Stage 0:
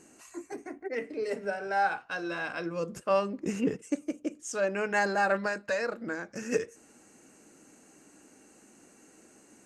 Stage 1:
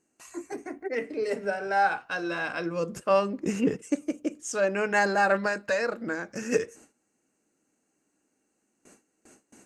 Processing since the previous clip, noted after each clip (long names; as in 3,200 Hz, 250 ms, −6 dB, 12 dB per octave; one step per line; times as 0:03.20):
noise gate with hold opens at −45 dBFS
level +3.5 dB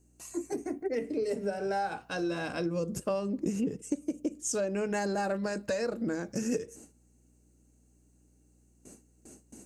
parametric band 1,600 Hz −15 dB 2.8 octaves
downward compressor 10 to 1, threshold −35 dBFS, peak gain reduction 13 dB
mains hum 60 Hz, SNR 31 dB
level +7.5 dB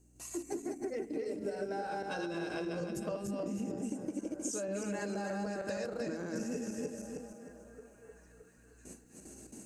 feedback delay that plays each chunk backwards 156 ms, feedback 53%, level −1 dB
downward compressor 6 to 1, threshold −35 dBFS, peak gain reduction 12.5 dB
echo through a band-pass that steps 620 ms, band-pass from 340 Hz, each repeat 0.7 octaves, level −11 dB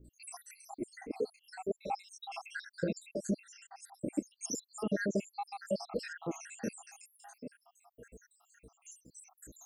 time-frequency cells dropped at random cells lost 83%
level +8 dB